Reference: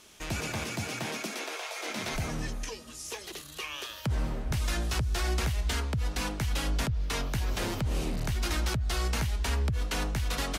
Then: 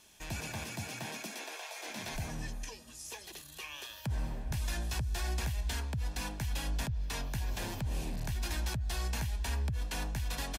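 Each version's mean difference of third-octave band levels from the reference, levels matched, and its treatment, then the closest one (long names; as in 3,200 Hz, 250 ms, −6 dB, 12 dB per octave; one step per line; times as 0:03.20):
2.0 dB: high-shelf EQ 11,000 Hz +7 dB
notch filter 1,300 Hz, Q 10
comb filter 1.2 ms, depth 32%
level −7 dB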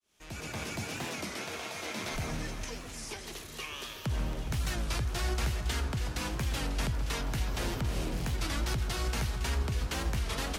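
3.5 dB: fade in at the beginning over 0.66 s
on a send: delay that swaps between a low-pass and a high-pass 138 ms, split 1,600 Hz, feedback 87%, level −9 dB
on the sum: wow of a warped record 33 1/3 rpm, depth 160 cents
level −3 dB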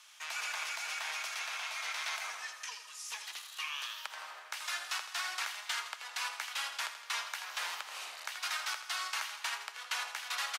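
14.0 dB: high-pass filter 950 Hz 24 dB per octave
high-shelf EQ 7,100 Hz −7 dB
on a send: repeating echo 82 ms, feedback 57%, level −10 dB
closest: first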